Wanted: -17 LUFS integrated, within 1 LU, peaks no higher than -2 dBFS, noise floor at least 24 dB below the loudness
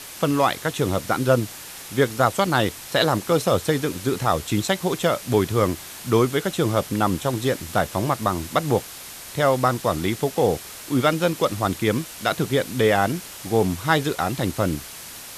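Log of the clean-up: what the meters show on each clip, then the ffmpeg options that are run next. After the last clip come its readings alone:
noise floor -39 dBFS; noise floor target -47 dBFS; loudness -22.5 LUFS; peak -3.0 dBFS; loudness target -17.0 LUFS
-> -af "afftdn=nr=8:nf=-39"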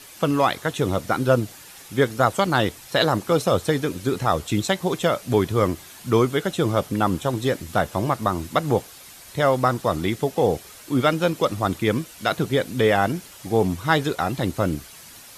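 noise floor -44 dBFS; noise floor target -47 dBFS
-> -af "afftdn=nr=6:nf=-44"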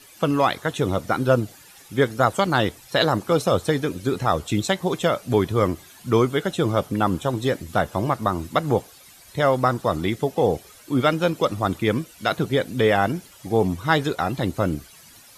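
noise floor -49 dBFS; loudness -22.5 LUFS; peak -3.0 dBFS; loudness target -17.0 LUFS
-> -af "volume=5.5dB,alimiter=limit=-2dB:level=0:latency=1"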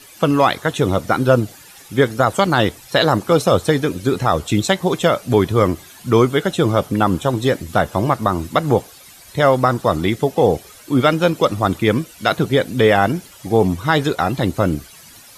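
loudness -17.5 LUFS; peak -2.0 dBFS; noise floor -43 dBFS

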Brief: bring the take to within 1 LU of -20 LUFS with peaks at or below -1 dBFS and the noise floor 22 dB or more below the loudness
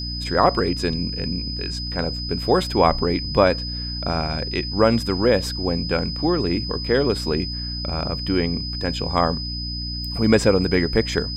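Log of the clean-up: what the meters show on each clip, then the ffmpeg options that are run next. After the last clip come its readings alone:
hum 60 Hz; harmonics up to 300 Hz; hum level -28 dBFS; steady tone 5000 Hz; tone level -29 dBFS; loudness -21.5 LUFS; peak -2.0 dBFS; loudness target -20.0 LUFS
-> -af "bandreject=f=60:t=h:w=4,bandreject=f=120:t=h:w=4,bandreject=f=180:t=h:w=4,bandreject=f=240:t=h:w=4,bandreject=f=300:t=h:w=4"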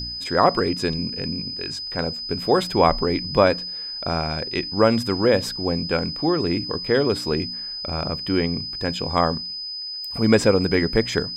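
hum none; steady tone 5000 Hz; tone level -29 dBFS
-> -af "bandreject=f=5k:w=30"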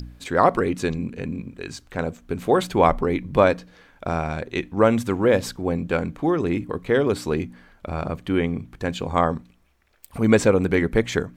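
steady tone none; loudness -22.5 LUFS; peak -2.5 dBFS; loudness target -20.0 LUFS
-> -af "volume=2.5dB,alimiter=limit=-1dB:level=0:latency=1"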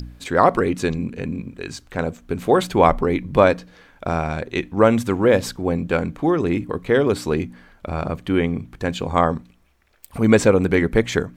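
loudness -20.0 LUFS; peak -1.0 dBFS; noise floor -55 dBFS

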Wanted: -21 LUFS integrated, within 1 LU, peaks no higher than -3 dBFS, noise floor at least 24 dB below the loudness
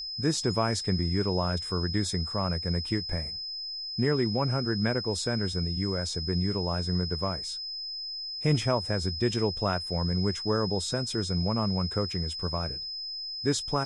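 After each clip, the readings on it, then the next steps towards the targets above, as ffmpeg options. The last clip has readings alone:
steady tone 5100 Hz; tone level -34 dBFS; loudness -29.0 LUFS; peak -11.5 dBFS; loudness target -21.0 LUFS
-> -af "bandreject=f=5.1k:w=30"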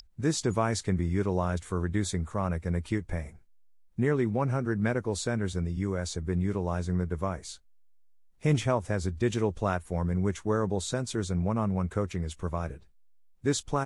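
steady tone none; loudness -30.0 LUFS; peak -12.5 dBFS; loudness target -21.0 LUFS
-> -af "volume=9dB"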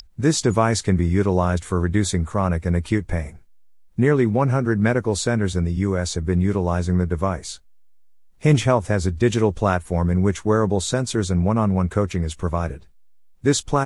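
loudness -21.0 LUFS; peak -3.5 dBFS; noise floor -47 dBFS

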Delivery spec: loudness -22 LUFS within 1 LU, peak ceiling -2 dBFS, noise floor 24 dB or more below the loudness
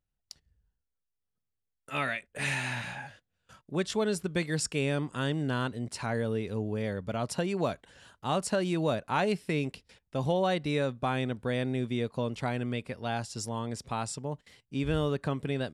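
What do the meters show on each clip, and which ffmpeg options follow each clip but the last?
loudness -32.0 LUFS; peak -16.0 dBFS; loudness target -22.0 LUFS
-> -af "volume=10dB"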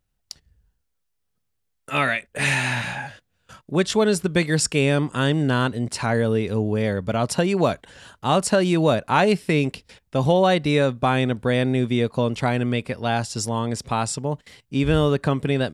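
loudness -22.0 LUFS; peak -6.0 dBFS; noise floor -74 dBFS

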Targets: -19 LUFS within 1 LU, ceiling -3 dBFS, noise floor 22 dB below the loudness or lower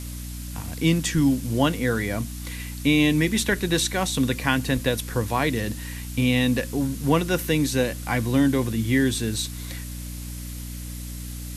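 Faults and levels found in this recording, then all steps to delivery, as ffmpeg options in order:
hum 60 Hz; harmonics up to 300 Hz; hum level -31 dBFS; noise floor -34 dBFS; noise floor target -46 dBFS; loudness -23.5 LUFS; peak -5.5 dBFS; loudness target -19.0 LUFS
-> -af "bandreject=f=60:t=h:w=6,bandreject=f=120:t=h:w=6,bandreject=f=180:t=h:w=6,bandreject=f=240:t=h:w=6,bandreject=f=300:t=h:w=6"
-af "afftdn=nr=12:nf=-34"
-af "volume=4.5dB,alimiter=limit=-3dB:level=0:latency=1"

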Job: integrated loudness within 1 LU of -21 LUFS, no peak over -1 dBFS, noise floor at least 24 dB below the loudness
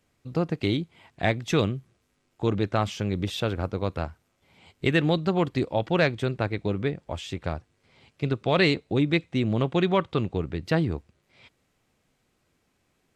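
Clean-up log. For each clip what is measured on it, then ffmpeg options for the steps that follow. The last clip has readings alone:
loudness -26.5 LUFS; peak -8.0 dBFS; loudness target -21.0 LUFS
-> -af "volume=5.5dB"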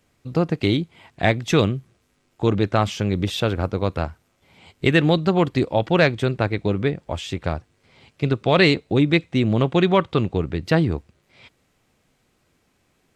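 loudness -21.0 LUFS; peak -2.5 dBFS; noise floor -66 dBFS

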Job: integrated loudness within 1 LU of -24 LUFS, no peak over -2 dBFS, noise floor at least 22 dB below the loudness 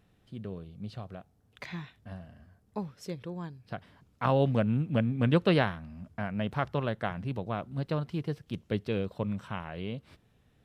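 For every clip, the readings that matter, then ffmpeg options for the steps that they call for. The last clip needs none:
loudness -32.0 LUFS; peak -11.5 dBFS; loudness target -24.0 LUFS
-> -af "volume=8dB"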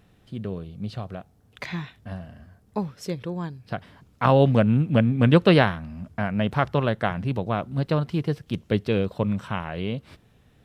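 loudness -24.0 LUFS; peak -3.5 dBFS; noise floor -59 dBFS

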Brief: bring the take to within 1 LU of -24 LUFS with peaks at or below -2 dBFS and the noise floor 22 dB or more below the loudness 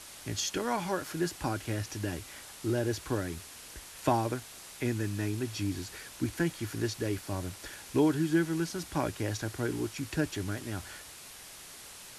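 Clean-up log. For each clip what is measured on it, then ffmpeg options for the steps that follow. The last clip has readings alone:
noise floor -49 dBFS; noise floor target -55 dBFS; loudness -33.0 LUFS; peak -13.0 dBFS; loudness target -24.0 LUFS
-> -af "afftdn=nr=6:nf=-49"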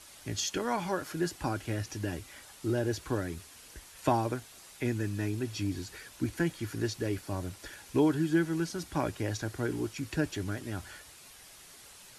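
noise floor -53 dBFS; noise floor target -56 dBFS
-> -af "afftdn=nr=6:nf=-53"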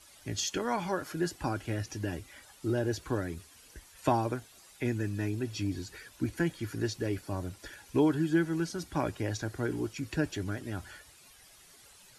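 noise floor -57 dBFS; loudness -33.5 LUFS; peak -13.0 dBFS; loudness target -24.0 LUFS
-> -af "volume=9.5dB"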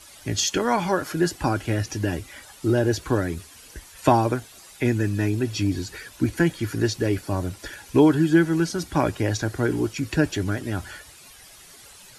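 loudness -24.0 LUFS; peak -3.5 dBFS; noise floor -48 dBFS

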